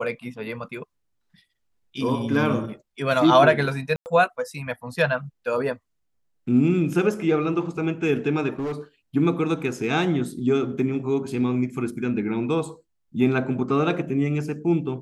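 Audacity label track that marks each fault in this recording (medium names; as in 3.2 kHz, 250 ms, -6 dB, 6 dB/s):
3.960000	4.060000	dropout 99 ms
8.590000	8.730000	clipped -24.5 dBFS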